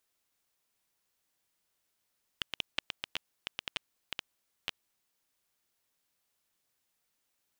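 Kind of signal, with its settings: random clicks 8.4/s -16 dBFS 2.46 s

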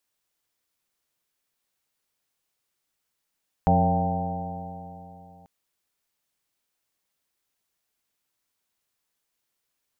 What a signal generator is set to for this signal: stretched partials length 1.79 s, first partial 87.5 Hz, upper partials 3.5/-6.5/-18.5/-7.5/-5.5/-3/3.5/-10.5 dB, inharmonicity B 0.0039, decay 3.16 s, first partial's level -23 dB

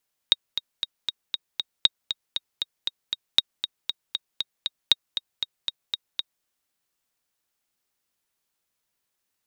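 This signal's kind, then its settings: metronome 235 bpm, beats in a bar 6, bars 4, 3760 Hz, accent 10 dB -2.5 dBFS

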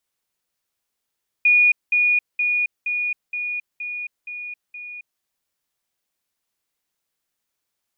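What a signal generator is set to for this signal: level ladder 2450 Hz -11.5 dBFS, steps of -3 dB, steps 8, 0.27 s 0.20 s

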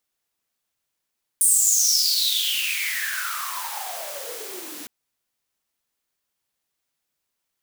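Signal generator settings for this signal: swept filtered noise white, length 3.46 s highpass, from 9300 Hz, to 270 Hz, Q 11, exponential, gain ramp -13.5 dB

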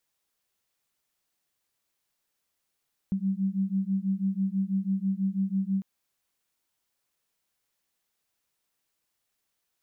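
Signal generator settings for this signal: beating tones 190 Hz, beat 6.1 Hz, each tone -28 dBFS 2.70 s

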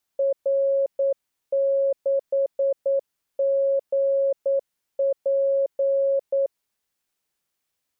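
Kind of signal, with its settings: Morse "R6GP" 9 wpm 549 Hz -18 dBFS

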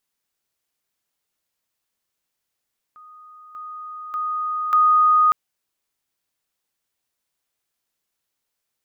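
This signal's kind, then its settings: level ladder 1240 Hz -42 dBFS, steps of 10 dB, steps 4, 0.59 s 0.00 s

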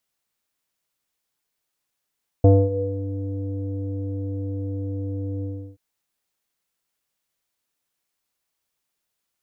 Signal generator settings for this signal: synth note square G2 24 dB/oct, low-pass 420 Hz, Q 8.3, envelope 0.5 oct, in 0.63 s, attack 3.8 ms, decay 0.25 s, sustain -17 dB, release 0.34 s, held 2.99 s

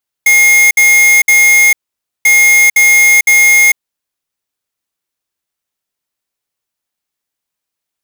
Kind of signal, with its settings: beep pattern square 2140 Hz, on 0.45 s, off 0.06 s, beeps 3, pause 0.52 s, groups 2, -6.5 dBFS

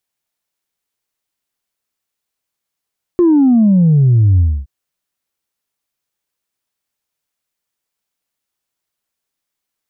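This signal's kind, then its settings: sub drop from 360 Hz, over 1.47 s, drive 0 dB, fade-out 0.27 s, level -7 dB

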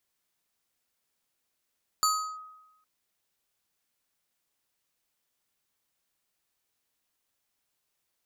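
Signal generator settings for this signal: FM tone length 0.81 s, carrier 1260 Hz, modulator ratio 4.62, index 1.1, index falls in 0.35 s linear, decay 1.01 s, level -19.5 dB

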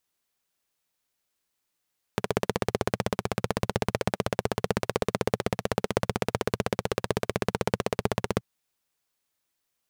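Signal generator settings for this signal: single-cylinder engine model, steady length 6.23 s, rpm 1900, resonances 120/190/420 Hz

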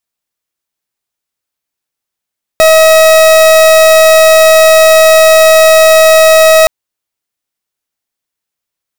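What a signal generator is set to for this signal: pulse 638 Hz, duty 41% -4 dBFS 4.07 s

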